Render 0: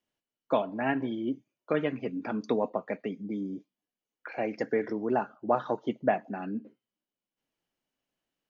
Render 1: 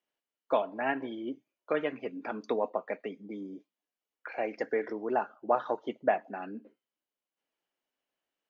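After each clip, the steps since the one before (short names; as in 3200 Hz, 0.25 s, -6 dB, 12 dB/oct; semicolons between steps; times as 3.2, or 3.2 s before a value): tone controls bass -15 dB, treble -6 dB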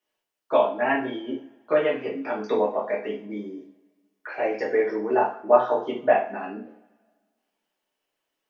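two-slope reverb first 0.4 s, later 1.7 s, from -26 dB, DRR -7 dB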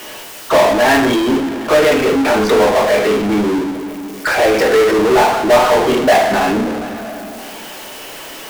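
power-law curve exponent 0.35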